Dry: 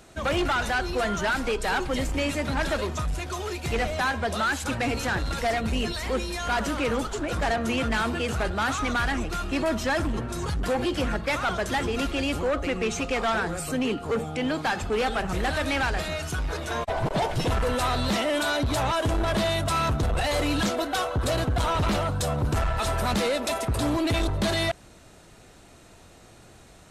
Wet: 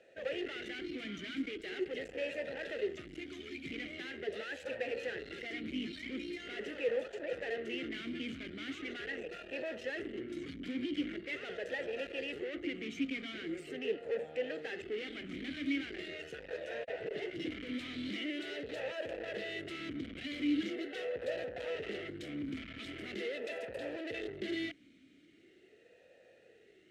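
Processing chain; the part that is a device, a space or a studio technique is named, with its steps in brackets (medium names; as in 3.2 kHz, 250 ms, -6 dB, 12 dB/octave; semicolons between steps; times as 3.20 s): talk box (valve stage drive 30 dB, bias 0.75; talking filter e-i 0.42 Hz); trim +6 dB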